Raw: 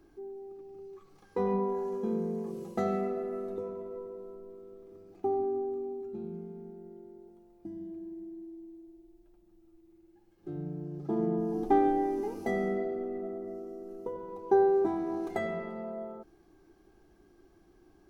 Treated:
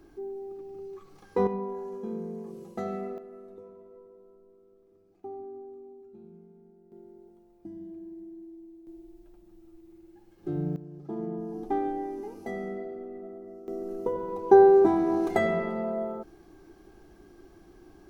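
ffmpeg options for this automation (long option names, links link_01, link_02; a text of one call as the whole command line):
ffmpeg -i in.wav -af "asetnsamples=nb_out_samples=441:pad=0,asendcmd='1.47 volume volume -3.5dB;3.18 volume volume -10.5dB;6.92 volume volume -0.5dB;8.87 volume volume 7.5dB;10.76 volume volume -4.5dB;13.68 volume volume 8dB',volume=5.5dB" out.wav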